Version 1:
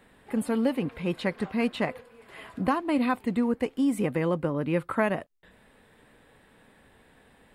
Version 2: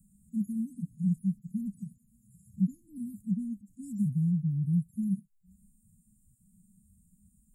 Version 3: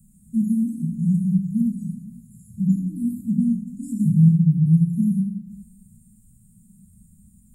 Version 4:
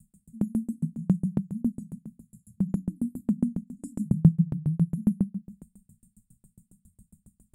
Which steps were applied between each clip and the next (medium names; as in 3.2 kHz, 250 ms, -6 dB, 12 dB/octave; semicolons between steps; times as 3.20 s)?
harmonic-percussive separation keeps harmonic; Chebyshev band-stop 200–6900 Hz, order 5; trim +6 dB
plate-style reverb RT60 1.2 s, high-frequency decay 0.5×, DRR -1.5 dB; trim +7.5 dB
sawtooth tremolo in dB decaying 7.3 Hz, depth 36 dB; trim +2.5 dB